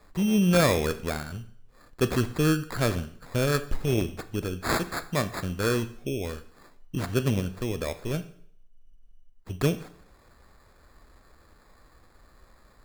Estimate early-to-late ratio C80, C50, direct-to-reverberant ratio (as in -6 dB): 18.5 dB, 15.5 dB, 11.0 dB